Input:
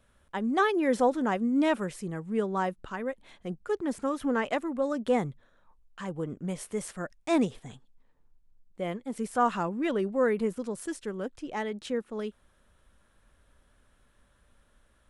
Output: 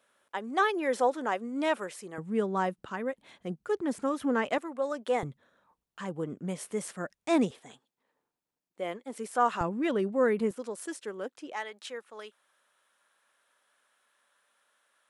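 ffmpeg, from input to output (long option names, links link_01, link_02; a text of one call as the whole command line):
ffmpeg -i in.wav -af "asetnsamples=nb_out_samples=441:pad=0,asendcmd='2.18 highpass f 110;4.58 highpass f 450;5.23 highpass f 150;7.51 highpass f 350;9.61 highpass f 94;10.51 highpass f 360;11.53 highpass f 780',highpass=430" out.wav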